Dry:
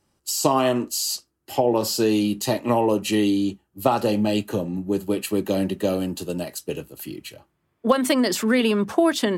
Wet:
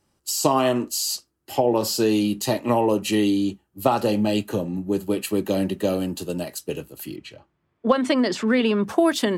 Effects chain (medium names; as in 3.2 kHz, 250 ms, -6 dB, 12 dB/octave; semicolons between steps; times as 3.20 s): 7.16–8.84 s: distance through air 100 m